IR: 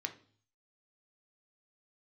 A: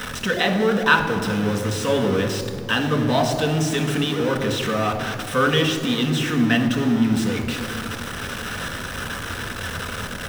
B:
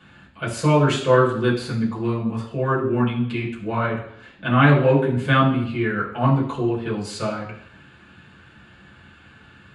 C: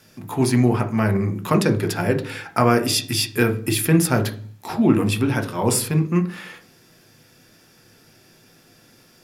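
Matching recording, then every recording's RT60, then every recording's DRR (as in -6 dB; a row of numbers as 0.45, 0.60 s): C; 2.2, 0.65, 0.45 s; 3.0, -6.0, 5.5 dB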